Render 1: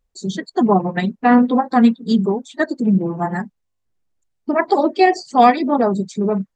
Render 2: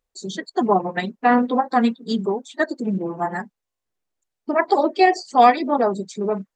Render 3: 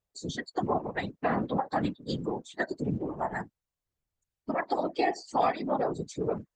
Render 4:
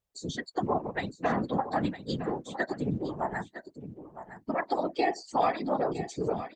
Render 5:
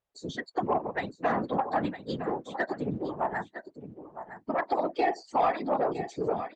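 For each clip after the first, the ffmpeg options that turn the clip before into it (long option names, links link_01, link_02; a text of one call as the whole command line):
ffmpeg -i in.wav -af "bass=frequency=250:gain=-11,treble=frequency=4000:gain=0,volume=-1dB" out.wav
ffmpeg -i in.wav -af "acompressor=threshold=-23dB:ratio=2,afftfilt=real='hypot(re,im)*cos(2*PI*random(0))':imag='hypot(re,im)*sin(2*PI*random(1))':win_size=512:overlap=0.75" out.wav
ffmpeg -i in.wav -af "aecho=1:1:960:0.237" out.wav
ffmpeg -i in.wav -filter_complex "[0:a]asplit=2[link_01][link_02];[link_02]highpass=frequency=720:poles=1,volume=11dB,asoftclip=type=tanh:threshold=-13.5dB[link_03];[link_01][link_03]amix=inputs=2:normalize=0,lowpass=frequency=1300:poles=1,volume=-6dB" out.wav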